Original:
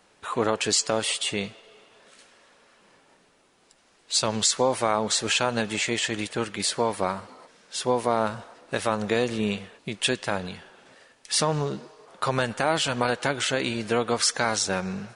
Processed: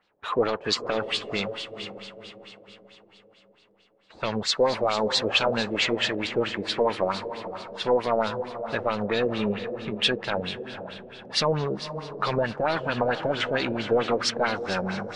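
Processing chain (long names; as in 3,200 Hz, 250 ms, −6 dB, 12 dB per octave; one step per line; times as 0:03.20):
leveller curve on the samples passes 2
feedback delay with all-pass diffusion 499 ms, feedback 44%, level −9.5 dB
auto-filter low-pass sine 4.5 Hz 490–4,400 Hz
level −8 dB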